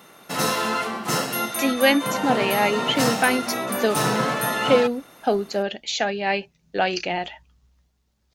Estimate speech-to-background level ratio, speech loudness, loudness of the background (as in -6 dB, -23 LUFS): 1.0 dB, -23.5 LUFS, -24.5 LUFS